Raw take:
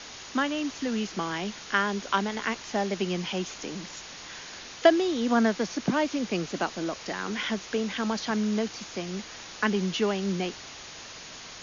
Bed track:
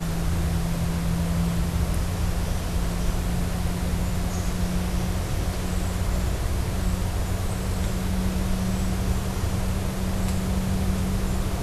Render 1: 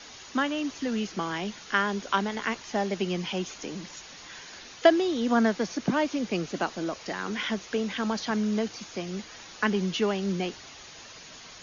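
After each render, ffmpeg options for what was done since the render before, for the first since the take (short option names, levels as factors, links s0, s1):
-af "afftdn=nr=6:nf=-44"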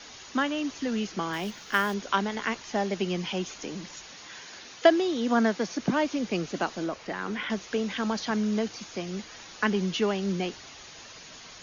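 -filter_complex "[0:a]asettb=1/sr,asplit=3[s0][s1][s2];[s0]atrim=end=1.334[s3];[s1]atrim=start=1.33:end=1.94,asetpts=PTS-STARTPTS,afade=t=in:d=0.004:c=qsin,afade=t=out:st=0.606:d=0.004:c=qsin,acrusher=bits=5:mode=log:mix=0:aa=0.000001[s4];[s2]atrim=start=1.936[s5];[s3][s4]acrossfade=d=0.004:c1=hsin:c2=qsin[s6];[s6][s5]acrossfade=d=0.004:c1=qsin:c2=hsin,asettb=1/sr,asplit=3[s7][s8][s9];[s7]atrim=end=4.124[s10];[s8]atrim=start=4.12:end=5.77,asetpts=PTS-STARTPTS,afade=t=in:d=0.004:c=qsin,afade=t=out:st=1.646:d=0.004:c=qsin,highpass=f=110:p=1[s11];[s9]atrim=start=5.766[s12];[s10][s11]acrossfade=d=0.004:c1=hsin:c2=qsin[s13];[s13][s12]acrossfade=d=0.004:c1=qsin:c2=hsin,asettb=1/sr,asplit=3[s14][s15][s16];[s14]atrim=end=6.864[s17];[s15]atrim=start=6.86:end=7.5,asetpts=PTS-STARTPTS,afade=t=in:d=0.004:c=qsin,afade=t=out:st=0.636:d=0.004:c=qsin,acrossover=split=3000[s18][s19];[s19]acompressor=threshold=0.00282:ratio=4:attack=1:release=60[s20];[s18][s20]amix=inputs=2:normalize=0[s21];[s16]atrim=start=7.496[s22];[s17][s21]acrossfade=d=0.004:c1=hsin:c2=qsin[s23];[s23][s22]acrossfade=d=0.004:c1=qsin:c2=hsin"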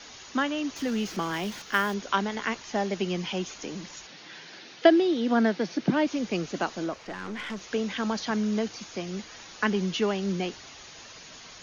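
-filter_complex "[0:a]asettb=1/sr,asplit=3[s0][s1][s2];[s0]atrim=end=0.764[s3];[s1]atrim=start=0.76:end=1.62,asetpts=PTS-STARTPTS,afade=t=in:d=0.004:c=qsin,afade=t=out:st=0.856:d=0.004:c=qsin,aeval=exprs='val(0)+0.5*0.00841*sgn(val(0))':c=same[s4];[s2]atrim=start=1.616[s5];[s3][s4]acrossfade=d=0.004:c1=hsin:c2=qsin[s6];[s6][s5]acrossfade=d=0.004:c1=qsin:c2=hsin,asettb=1/sr,asplit=3[s7][s8][s9];[s7]atrim=end=4.074[s10];[s8]atrim=start=4.07:end=6.07,asetpts=PTS-STARTPTS,afade=t=in:d=0.004:c=qsin,afade=t=out:st=1.996:d=0.004:c=qsin,highpass=120,equalizer=f=160:t=q:w=4:g=7,equalizer=f=330:t=q:w=4:g=5,equalizer=f=1100:t=q:w=4:g=-5,lowpass=f=5300:w=0.5412,lowpass=f=5300:w=1.3066[s11];[s9]atrim=start=6.066[s12];[s10][s11]acrossfade=d=0.004:c1=hsin:c2=qsin[s13];[s13][s12]acrossfade=d=0.004:c1=qsin:c2=hsin,asettb=1/sr,asplit=3[s14][s15][s16];[s14]atrim=end=6.934[s17];[s15]atrim=start=6.93:end=7.61,asetpts=PTS-STARTPTS,afade=t=in:d=0.004:c=qsin,afade=t=out:st=0.676:d=0.004:c=qsin,aeval=exprs='(tanh(31.6*val(0)+0.35)-tanh(0.35))/31.6':c=same[s18];[s16]atrim=start=7.606[s19];[s17][s18]acrossfade=d=0.004:c1=hsin:c2=qsin[s20];[s20][s19]acrossfade=d=0.004:c1=qsin:c2=hsin"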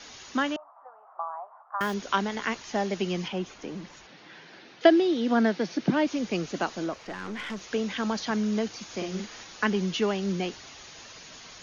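-filter_complex "[0:a]asettb=1/sr,asplit=3[s0][s1][s2];[s0]atrim=end=0.564[s3];[s1]atrim=start=0.56:end=1.81,asetpts=PTS-STARTPTS,afade=t=in:d=0.004:c=qsin,afade=t=out:st=1.246:d=0.004:c=qsin,asuperpass=centerf=890:order=8:qfactor=1.5[s4];[s2]atrim=start=1.806[s5];[s3][s4]acrossfade=d=0.004:c1=hsin:c2=qsin[s6];[s6][s5]acrossfade=d=0.004:c1=qsin:c2=hsin,asettb=1/sr,asplit=3[s7][s8][s9];[s7]atrim=end=3.284[s10];[s8]atrim=start=3.28:end=4.81,asetpts=PTS-STARTPTS,afade=t=in:d=0.004:c=qsin,afade=t=out:st=1.526:d=0.004:c=qsin,lowpass=f=1900:p=1[s11];[s9]atrim=start=4.806[s12];[s10][s11]acrossfade=d=0.004:c1=hsin:c2=qsin[s13];[s13][s12]acrossfade=d=0.004:c1=qsin:c2=hsin,asettb=1/sr,asplit=3[s14][s15][s16];[s14]atrim=end=8.854[s17];[s15]atrim=start=8.85:end=9.44,asetpts=PTS-STARTPTS,afade=t=in:d=0.004:c=qsin,afade=t=out:st=0.586:d=0.004:c=qsin,asplit=2[s18][s19];[s19]adelay=49,volume=0.668[s20];[s18][s20]amix=inputs=2:normalize=0,atrim=end_sample=26019[s21];[s16]atrim=start=9.436[s22];[s17][s21]acrossfade=d=0.004:c1=hsin:c2=qsin[s23];[s23][s22]acrossfade=d=0.004:c1=qsin:c2=hsin"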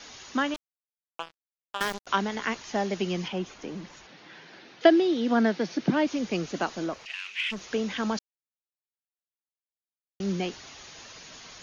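-filter_complex "[0:a]asettb=1/sr,asplit=3[s0][s1][s2];[s0]atrim=end=0.544[s3];[s1]atrim=start=0.54:end=2.07,asetpts=PTS-STARTPTS,afade=t=in:d=0.004:c=qsin,afade=t=out:st=1.526:d=0.004:c=qsin,acrusher=bits=3:mix=0:aa=0.5[s4];[s2]atrim=start=2.066[s5];[s3][s4]acrossfade=d=0.004:c1=hsin:c2=qsin[s6];[s6][s5]acrossfade=d=0.004:c1=qsin:c2=hsin,asplit=3[s7][s8][s9];[s7]afade=t=out:st=7.05:d=0.02[s10];[s8]highpass=f=2600:t=q:w=8.3,afade=t=in:st=7.05:d=0.02,afade=t=out:st=7.51:d=0.02[s11];[s9]afade=t=in:st=7.51:d=0.02[s12];[s10][s11][s12]amix=inputs=3:normalize=0,asplit=3[s13][s14][s15];[s13]atrim=end=8.19,asetpts=PTS-STARTPTS,afade=t=out:st=8.186:d=0.004:c=hsin[s16];[s14]atrim=start=8.19:end=10.2,asetpts=PTS-STARTPTS,volume=0[s17];[s15]atrim=start=10.2,asetpts=PTS-STARTPTS,afade=t=in:d=0.004:c=hsin[s18];[s16][s17][s18]concat=n=3:v=0:a=1"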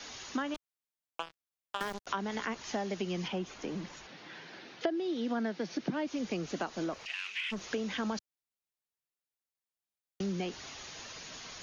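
-filter_complex "[0:a]acrossover=split=110|1400[s0][s1][s2];[s2]alimiter=level_in=1.26:limit=0.0631:level=0:latency=1:release=196,volume=0.794[s3];[s0][s1][s3]amix=inputs=3:normalize=0,acompressor=threshold=0.0251:ratio=4"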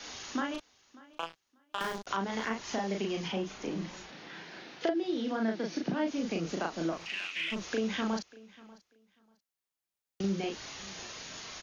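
-filter_complex "[0:a]asplit=2[s0][s1];[s1]adelay=36,volume=0.75[s2];[s0][s2]amix=inputs=2:normalize=0,aecho=1:1:590|1180:0.0841|0.016"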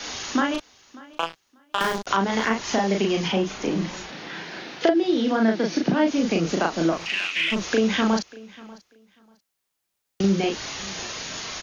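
-af "volume=3.55"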